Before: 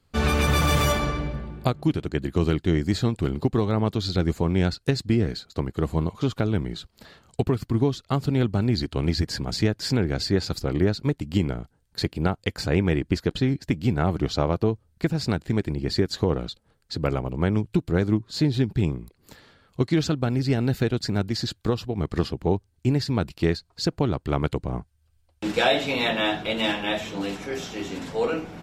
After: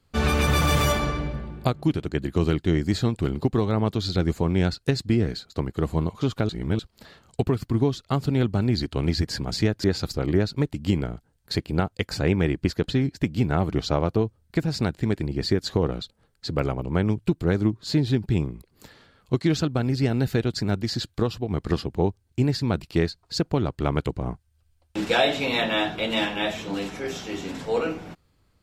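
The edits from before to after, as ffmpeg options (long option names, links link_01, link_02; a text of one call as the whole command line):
ffmpeg -i in.wav -filter_complex "[0:a]asplit=4[link_01][link_02][link_03][link_04];[link_01]atrim=end=6.492[link_05];[link_02]atrim=start=6.488:end=6.792,asetpts=PTS-STARTPTS,areverse[link_06];[link_03]atrim=start=6.788:end=9.842[link_07];[link_04]atrim=start=10.308[link_08];[link_05][link_06]acrossfade=duration=0.004:curve1=hsin:curve2=hsin[link_09];[link_09][link_07]acrossfade=duration=0.004:curve1=hsin:curve2=hsin[link_10];[link_10][link_08]acrossfade=duration=0.004:curve1=hsin:curve2=hsin" out.wav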